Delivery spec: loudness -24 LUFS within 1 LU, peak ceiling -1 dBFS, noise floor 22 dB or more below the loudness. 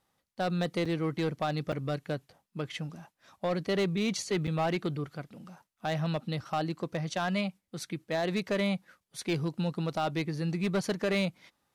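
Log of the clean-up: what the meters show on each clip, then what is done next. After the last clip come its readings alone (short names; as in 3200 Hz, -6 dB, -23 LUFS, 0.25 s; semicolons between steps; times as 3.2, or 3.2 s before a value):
clipped 1.5%; flat tops at -23.5 dBFS; dropouts 3; longest dropout 5.4 ms; loudness -32.5 LUFS; peak -23.5 dBFS; loudness target -24.0 LUFS
-> clip repair -23.5 dBFS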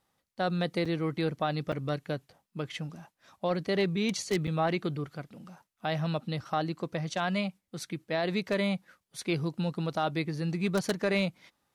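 clipped 0.0%; dropouts 3; longest dropout 5.4 ms
-> interpolate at 0.85/1.72/4.47, 5.4 ms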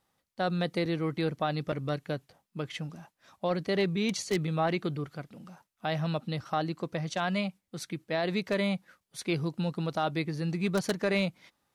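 dropouts 0; loudness -32.0 LUFS; peak -14.5 dBFS; loudness target -24.0 LUFS
-> gain +8 dB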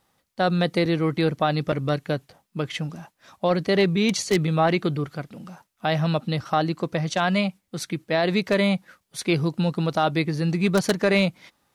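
loudness -24.0 LUFS; peak -6.5 dBFS; noise floor -74 dBFS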